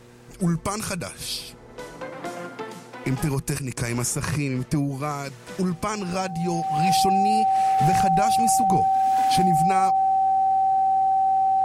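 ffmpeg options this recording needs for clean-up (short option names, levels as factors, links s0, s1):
-af "bandreject=f=120.3:t=h:w=4,bandreject=f=240.6:t=h:w=4,bandreject=f=360.9:t=h:w=4,bandreject=f=481.2:t=h:w=4,bandreject=f=770:w=30"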